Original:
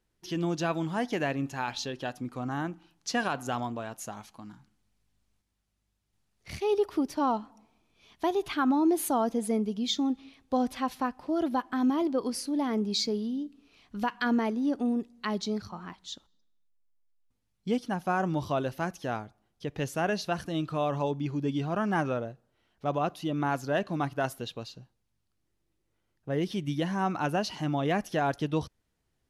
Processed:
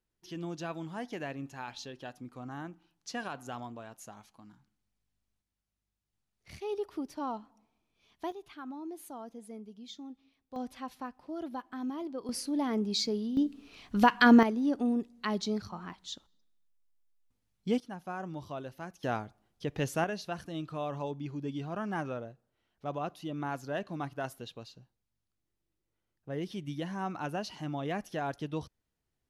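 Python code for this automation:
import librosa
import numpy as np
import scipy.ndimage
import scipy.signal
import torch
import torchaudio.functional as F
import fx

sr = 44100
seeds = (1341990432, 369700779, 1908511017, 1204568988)

y = fx.gain(x, sr, db=fx.steps((0.0, -9.0), (8.32, -17.5), (10.56, -10.5), (12.29, -2.0), (13.37, 7.5), (14.43, -1.0), (17.8, -11.0), (19.03, 0.0), (20.04, -7.0)))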